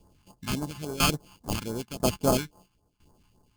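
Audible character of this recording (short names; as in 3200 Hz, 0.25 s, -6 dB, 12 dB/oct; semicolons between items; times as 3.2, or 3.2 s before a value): a buzz of ramps at a fixed pitch in blocks of 16 samples; tremolo saw down 1 Hz, depth 85%; aliases and images of a low sample rate 1900 Hz, jitter 0%; phasing stages 2, 3.6 Hz, lowest notch 490–2600 Hz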